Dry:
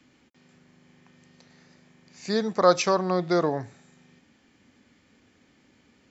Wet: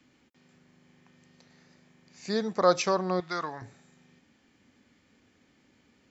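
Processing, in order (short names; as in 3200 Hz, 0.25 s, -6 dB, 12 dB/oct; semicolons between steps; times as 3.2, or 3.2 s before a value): 3.2–3.62 resonant low shelf 780 Hz -10.5 dB, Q 1.5; gain -3.5 dB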